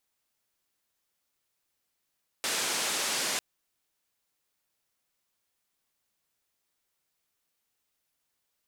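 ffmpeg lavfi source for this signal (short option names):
-f lavfi -i "anoisesrc=c=white:d=0.95:r=44100:seed=1,highpass=f=230,lowpass=f=8200,volume=-21.4dB"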